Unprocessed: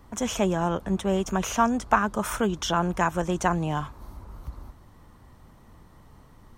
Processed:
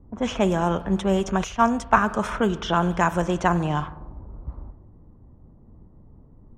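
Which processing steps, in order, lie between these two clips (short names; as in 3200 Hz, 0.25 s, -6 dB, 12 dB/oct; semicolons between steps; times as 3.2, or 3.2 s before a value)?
spring tank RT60 1.3 s, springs 46 ms, chirp 65 ms, DRR 14 dB; low-pass opened by the level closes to 370 Hz, open at -20 dBFS; 1.44–1.98 three-band expander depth 70%; gain +3 dB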